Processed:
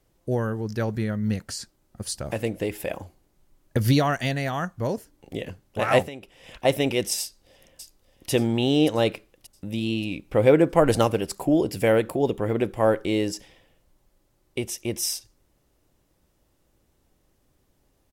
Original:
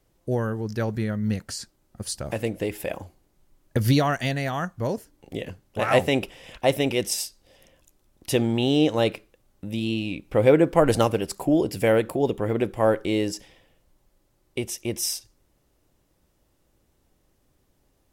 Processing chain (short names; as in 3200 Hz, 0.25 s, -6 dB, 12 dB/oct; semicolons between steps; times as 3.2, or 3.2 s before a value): 6.02–6.65 compressor 5:1, threshold -37 dBFS, peak gain reduction 17.5 dB; 7.21–8.3 echo throw 0.58 s, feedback 50%, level -9 dB